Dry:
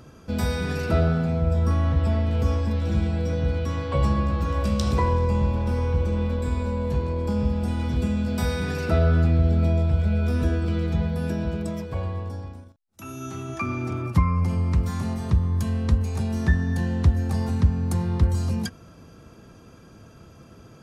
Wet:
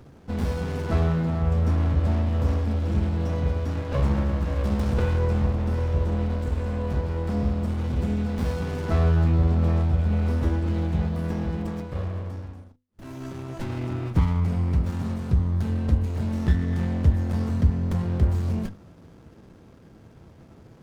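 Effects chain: hum notches 50/100/150/200/250 Hz; sliding maximum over 33 samples

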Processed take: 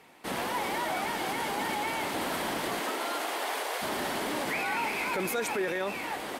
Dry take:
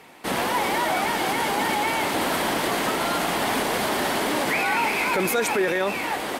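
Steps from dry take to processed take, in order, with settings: 2.79–3.81 s: high-pass 230 Hz -> 480 Hz 24 dB/octave; trim -8 dB

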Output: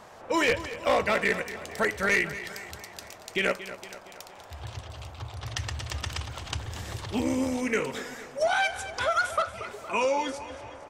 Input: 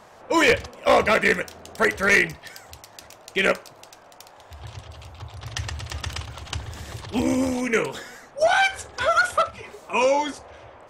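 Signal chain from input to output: compression 1.5:1, threshold -33 dBFS, peak gain reduction 7 dB; feedback delay 232 ms, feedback 53%, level -14 dB

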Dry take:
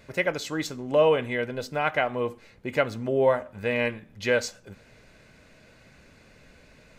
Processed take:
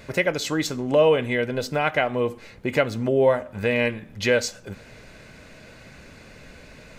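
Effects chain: dynamic bell 1.1 kHz, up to -4 dB, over -35 dBFS, Q 0.87; in parallel at 0 dB: compression, threshold -33 dBFS, peak gain reduction 15 dB; on the sum: trim +2.5 dB

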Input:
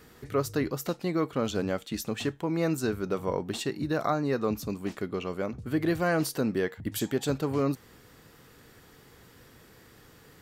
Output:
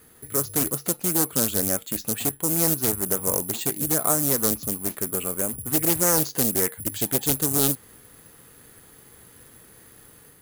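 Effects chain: level rider gain up to 4 dB; careless resampling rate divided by 4×, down filtered, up zero stuff; loudspeaker Doppler distortion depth 0.61 ms; trim -3 dB

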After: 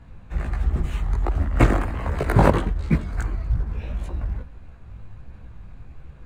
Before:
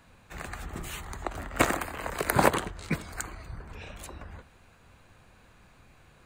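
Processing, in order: chorus voices 2, 1.4 Hz, delay 17 ms, depth 3 ms; short-mantissa float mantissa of 2-bit; RIAA curve playback; trim +5.5 dB

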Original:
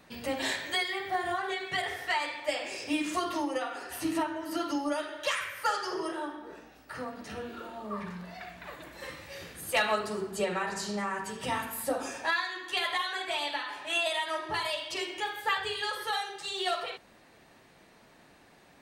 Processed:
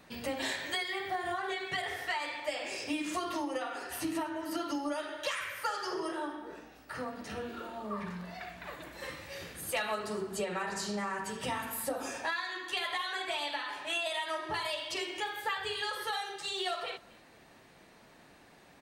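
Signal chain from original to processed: compression 3:1, threshold -32 dBFS, peak gain reduction 7.5 dB; delay 242 ms -22.5 dB

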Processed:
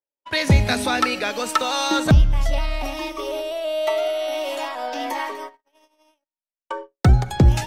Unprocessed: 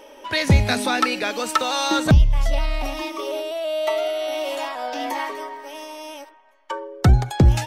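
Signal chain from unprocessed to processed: algorithmic reverb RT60 1.5 s, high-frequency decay 0.45×, pre-delay 20 ms, DRR 19.5 dB; gate -31 dBFS, range -56 dB

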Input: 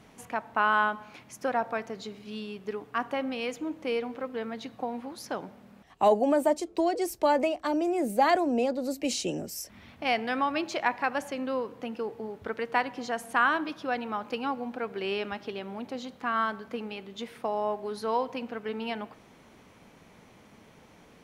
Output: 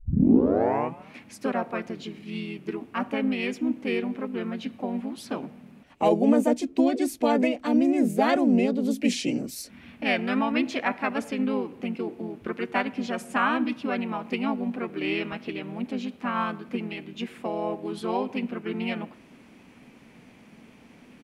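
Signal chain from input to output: tape start-up on the opening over 1.16 s; harmony voices -4 st -1 dB; fifteen-band graphic EQ 250 Hz +12 dB, 2.5 kHz +8 dB, 10 kHz +3 dB; trim -4 dB

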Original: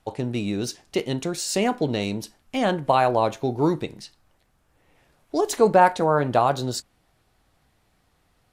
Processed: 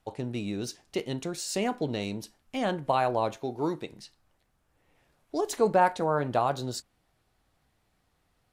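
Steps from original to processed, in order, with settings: 3.38–3.92 s: bass shelf 140 Hz -11.5 dB; trim -6.5 dB

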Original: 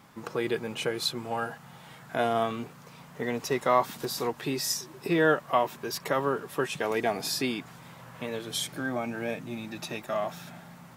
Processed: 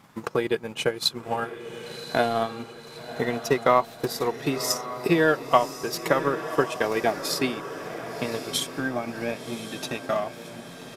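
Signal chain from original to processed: resampled via 32 kHz; transient shaper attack +7 dB, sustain -9 dB; echo that smears into a reverb 1094 ms, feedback 52%, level -11 dB; trim +1 dB

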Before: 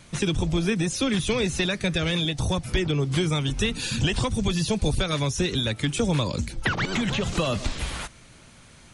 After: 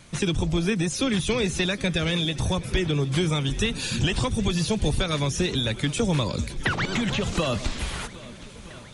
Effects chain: shuffle delay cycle 1279 ms, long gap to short 1.5:1, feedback 60%, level -20 dB

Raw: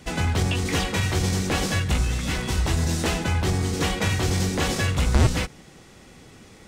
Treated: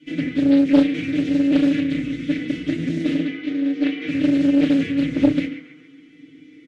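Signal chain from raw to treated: 3.24–4.08 s: three-band isolator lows -19 dB, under 300 Hz, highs -21 dB, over 5 kHz; comb 6.5 ms, depth 54%; dynamic bell 210 Hz, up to +7 dB, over -39 dBFS, Q 1.1; vowel filter i; band-passed feedback delay 138 ms, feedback 59%, band-pass 1.2 kHz, level -6 dB; FDN reverb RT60 0.46 s, low-frequency decay 0.8×, high-frequency decay 0.45×, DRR -8.5 dB; loudspeaker Doppler distortion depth 0.46 ms

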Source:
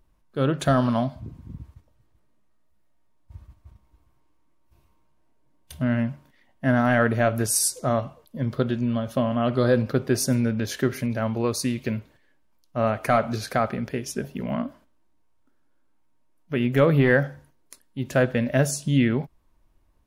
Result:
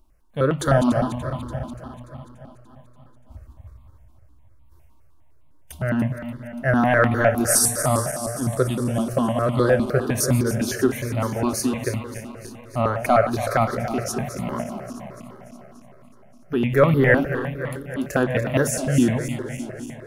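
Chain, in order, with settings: backward echo that repeats 145 ms, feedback 79%, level -10.5 dB; stepped phaser 9.8 Hz 480–1600 Hz; trim +5.5 dB

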